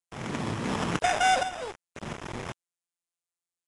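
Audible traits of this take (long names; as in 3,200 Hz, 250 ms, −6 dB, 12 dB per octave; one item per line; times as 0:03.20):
a quantiser's noise floor 6 bits, dither none
tremolo saw up 0.7 Hz, depth 60%
aliases and images of a low sample rate 4,300 Hz, jitter 0%
Nellymoser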